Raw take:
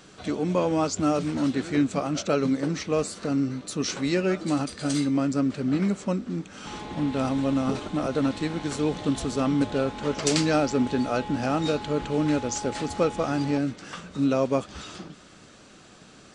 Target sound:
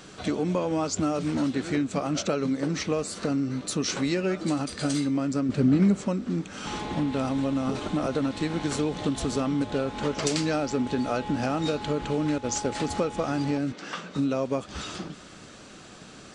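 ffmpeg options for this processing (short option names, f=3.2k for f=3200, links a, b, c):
-filter_complex "[0:a]asettb=1/sr,asplit=3[a][b][c];[a]atrim=end=12.384[d];[b]atrim=start=12.38:end=12.8,asetpts=PTS-STARTPTS,afade=t=in:d=0.004:c=qsin,afade=t=out:st=0.416:d=0.004:c=qsin,agate=range=-33dB:threshold=-28dB:ratio=3:detection=peak[e];[c]atrim=start=12.796[f];[d][e]acrossfade=d=0.004:c1=hsin:c2=qsin[g];[g][f]acrossfade=d=0.004:c1=qsin:c2=hsin,acompressor=threshold=-27dB:ratio=6,asettb=1/sr,asplit=3[h][i][j];[h]atrim=end=5.494[k];[i]atrim=start=5.49:end=6.01,asetpts=PTS-STARTPTS,afade=t=in:d=0.004:c=qsin,afade=t=out:st=0.516:d=0.004:c=qsin,lowshelf=f=410:g=8[l];[j]atrim=start=6.006[m];[k][l]acrossfade=d=0.004:c1=hsin:c2=qsin[n];[n][m]acrossfade=d=0.004:c1=qsin:c2=hsin,asettb=1/sr,asplit=3[o][p][q];[o]atrim=end=13.724[r];[p]atrim=start=13.72:end=14.16,asetpts=PTS-STARTPTS,afade=t=in:d=0.004:c=qsin,afade=t=out:st=0.436:d=0.004:c=qsin,highpass=210,lowpass=6k[s];[q]atrim=start=14.156[t];[r][s]acrossfade=d=0.004:c1=hsin:c2=qsin[u];[u][t]acrossfade=d=0.004:c1=qsin:c2=hsin,volume=4dB"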